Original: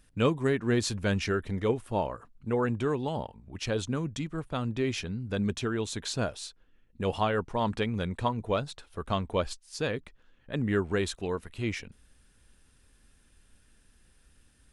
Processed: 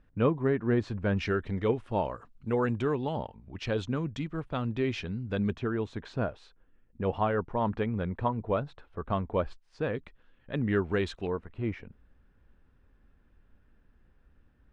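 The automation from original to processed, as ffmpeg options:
-af "asetnsamples=n=441:p=0,asendcmd='1.17 lowpass f 3400;2.04 lowpass f 5600;2.82 lowpass f 3400;5.53 lowpass f 1700;9.95 lowpass f 3400;11.27 lowpass f 1400',lowpass=1.6k"

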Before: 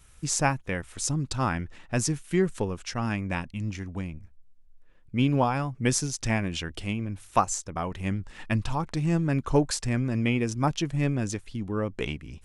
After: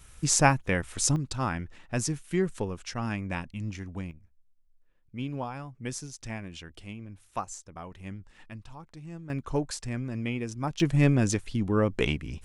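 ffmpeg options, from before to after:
-af "asetnsamples=n=441:p=0,asendcmd='1.16 volume volume -3dB;4.11 volume volume -11dB;8.5 volume volume -17dB;9.3 volume volume -6.5dB;10.8 volume volume 4.5dB',volume=3.5dB"

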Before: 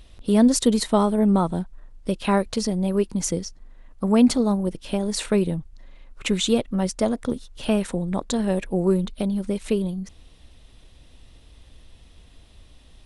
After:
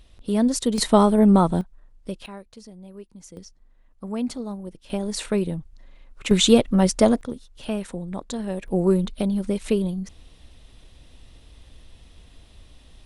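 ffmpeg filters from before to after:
-af "asetnsamples=n=441:p=0,asendcmd='0.78 volume volume 3.5dB;1.61 volume volume -7dB;2.26 volume volume -19.5dB;3.37 volume volume -11dB;4.9 volume volume -2.5dB;6.31 volume volume 5.5dB;7.21 volume volume -6dB;8.68 volume volume 1dB',volume=-4dB"

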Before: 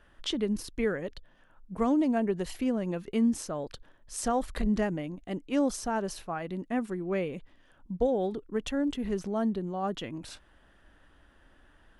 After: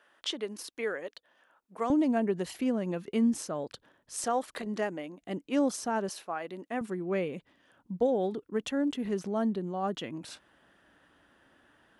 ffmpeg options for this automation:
-af "asetnsamples=n=441:p=0,asendcmd='1.9 highpass f 140;4.24 highpass f 340;5.21 highpass f 160;6.09 highpass f 350;6.81 highpass f 140',highpass=470"

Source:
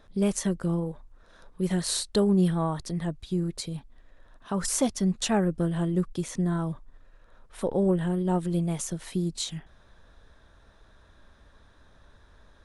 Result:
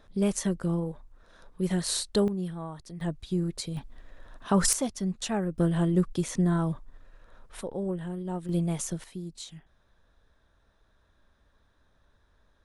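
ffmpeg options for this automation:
-af "asetnsamples=n=441:p=0,asendcmd='2.28 volume volume -10.5dB;3.01 volume volume -0.5dB;3.77 volume volume 6dB;4.73 volume volume -5dB;5.58 volume volume 2dB;7.61 volume volume -8dB;8.49 volume volume -0.5dB;9.04 volume volume -10dB',volume=-1dB"

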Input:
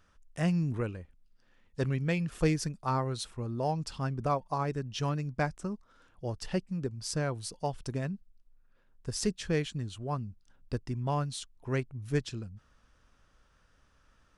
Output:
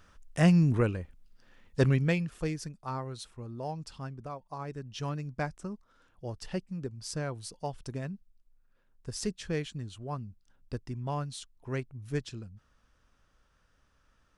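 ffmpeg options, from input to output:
-af "volume=15.5dB,afade=t=out:st=1.88:d=0.47:silence=0.237137,afade=t=out:st=3.98:d=0.34:silence=0.501187,afade=t=in:st=4.32:d=0.81:silence=0.354813"

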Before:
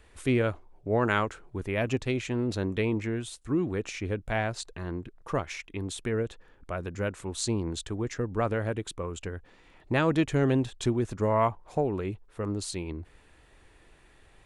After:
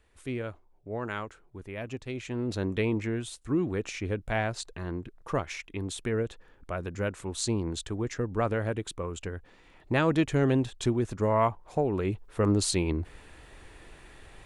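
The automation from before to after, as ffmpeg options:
-af "volume=7.5dB,afade=t=in:st=2.04:d=0.64:silence=0.354813,afade=t=in:st=11.84:d=0.61:silence=0.421697"

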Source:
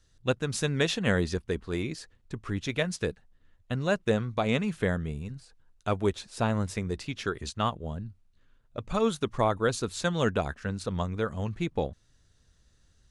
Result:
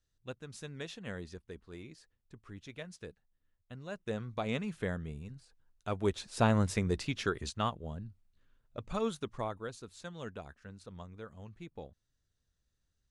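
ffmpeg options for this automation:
-af "volume=0.5dB,afade=t=in:st=3.9:d=0.44:silence=0.375837,afade=t=in:st=5.89:d=0.54:silence=0.375837,afade=t=out:st=7:d=0.75:silence=0.473151,afade=t=out:st=8.84:d=0.9:silence=0.281838"

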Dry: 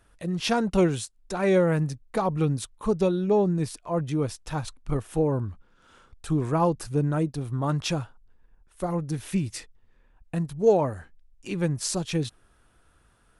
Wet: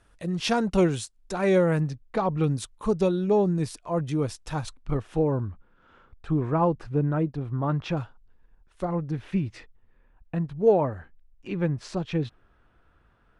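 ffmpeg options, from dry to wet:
-af "asetnsamples=n=441:p=0,asendcmd='1.81 lowpass f 4400;2.44 lowpass f 9800;4.76 lowpass f 4500;5.48 lowpass f 2300;7.97 lowpass f 5100;8.85 lowpass f 2600',lowpass=9.8k"

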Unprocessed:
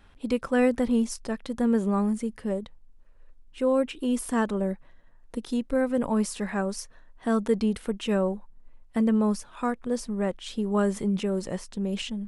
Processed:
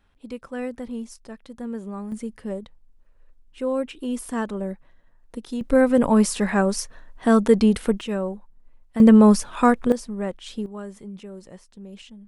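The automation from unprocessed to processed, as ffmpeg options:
-af "asetnsamples=n=441:p=0,asendcmd='2.12 volume volume -1.5dB;5.61 volume volume 8dB;8.01 volume volume -1.5dB;9 volume volume 11dB;9.92 volume volume -0.5dB;10.66 volume volume -11.5dB',volume=-8.5dB"

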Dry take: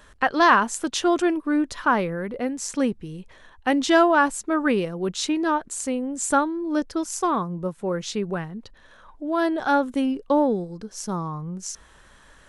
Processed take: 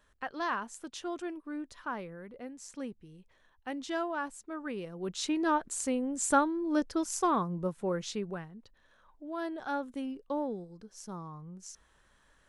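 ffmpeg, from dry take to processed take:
-af "volume=-5dB,afade=t=in:st=4.73:d=0.84:silence=0.251189,afade=t=out:st=7.79:d=0.72:silence=0.354813"

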